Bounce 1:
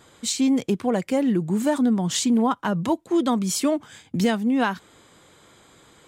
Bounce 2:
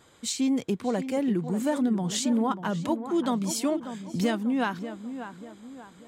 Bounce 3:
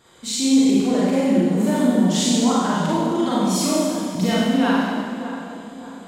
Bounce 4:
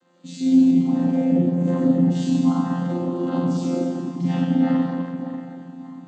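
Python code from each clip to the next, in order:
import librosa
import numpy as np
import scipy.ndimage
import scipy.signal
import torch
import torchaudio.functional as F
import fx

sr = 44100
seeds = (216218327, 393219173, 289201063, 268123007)

y1 = fx.echo_tape(x, sr, ms=589, feedback_pct=47, wet_db=-9, lp_hz=1600.0, drive_db=8.0, wow_cents=28)
y1 = F.gain(torch.from_numpy(y1), -5.0).numpy()
y2 = fx.peak_eq(y1, sr, hz=4000.0, db=2.5, octaves=0.77)
y2 = fx.rev_schroeder(y2, sr, rt60_s=1.7, comb_ms=33, drr_db=-7.5)
y3 = fx.chord_vocoder(y2, sr, chord='bare fifth', root=53)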